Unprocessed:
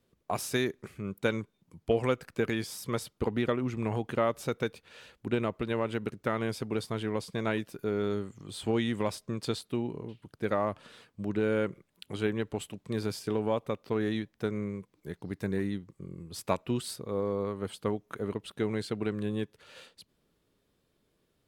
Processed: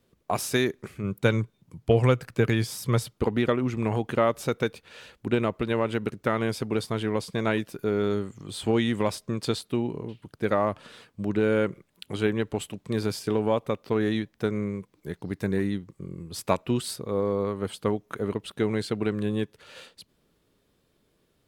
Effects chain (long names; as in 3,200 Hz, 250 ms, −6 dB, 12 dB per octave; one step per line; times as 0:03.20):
0:01.03–0:03.14: parametric band 120 Hz +9.5 dB 0.58 octaves
level +5 dB